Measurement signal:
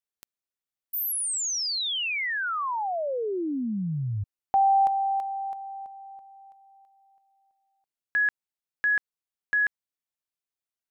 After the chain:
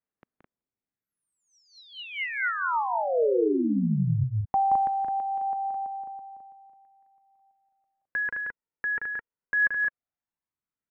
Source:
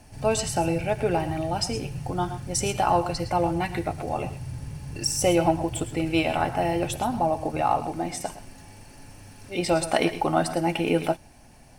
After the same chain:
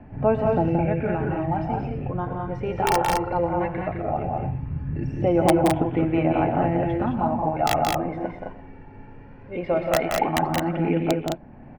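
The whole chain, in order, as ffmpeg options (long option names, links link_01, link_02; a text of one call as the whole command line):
ffmpeg -i in.wav -filter_complex "[0:a]lowpass=frequency=2100:width=0.5412,lowpass=frequency=2100:width=1.3066,equalizer=frequency=230:width_type=o:width=1.9:gain=8,acrossover=split=530[link_01][link_02];[link_01]alimiter=limit=-18.5dB:level=0:latency=1:release=420[link_03];[link_03][link_02]amix=inputs=2:normalize=0,aeval=exprs='(mod(3.16*val(0)+1,2)-1)/3.16':channel_layout=same,aphaser=in_gain=1:out_gain=1:delay=2.2:decay=0.47:speed=0.17:type=sinusoidal,aecho=1:1:174.9|212.8:0.562|0.631,volume=-2.5dB" out.wav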